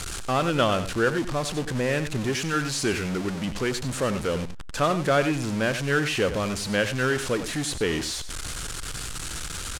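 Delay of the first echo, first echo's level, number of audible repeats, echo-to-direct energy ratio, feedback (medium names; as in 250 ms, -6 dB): 93 ms, -11.5 dB, 1, -11.5 dB, no regular repeats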